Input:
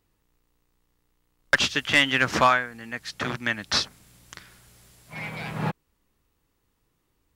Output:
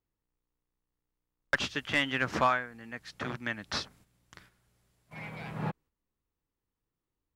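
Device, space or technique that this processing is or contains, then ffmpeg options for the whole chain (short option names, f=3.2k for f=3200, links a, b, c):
behind a face mask: -af "agate=range=-9dB:threshold=-49dB:ratio=16:detection=peak,highshelf=f=2.5k:g=-7.5,volume=-6dB"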